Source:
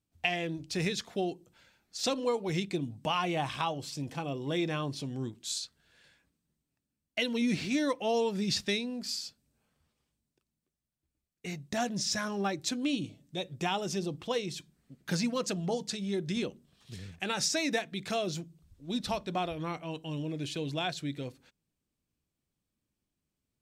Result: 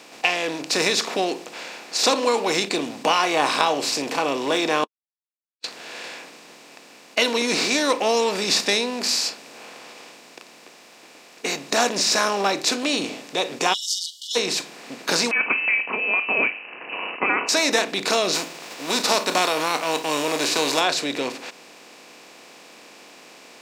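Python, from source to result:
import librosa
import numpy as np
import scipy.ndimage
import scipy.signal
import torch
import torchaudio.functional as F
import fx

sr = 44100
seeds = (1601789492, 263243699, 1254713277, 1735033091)

y = fx.brickwall_highpass(x, sr, low_hz=2900.0, at=(13.72, 14.35), fade=0.02)
y = fx.freq_invert(y, sr, carrier_hz=2800, at=(15.31, 17.49))
y = fx.envelope_flatten(y, sr, power=0.6, at=(18.33, 20.79), fade=0.02)
y = fx.edit(y, sr, fx.silence(start_s=4.84, length_s=0.8), tone=tone)
y = fx.bin_compress(y, sr, power=0.4)
y = scipy.signal.sosfilt(scipy.signal.butter(2, 410.0, 'highpass', fs=sr, output='sos'), y)
y = fx.noise_reduce_blind(y, sr, reduce_db=7)
y = y * 10.0 ** (8.0 / 20.0)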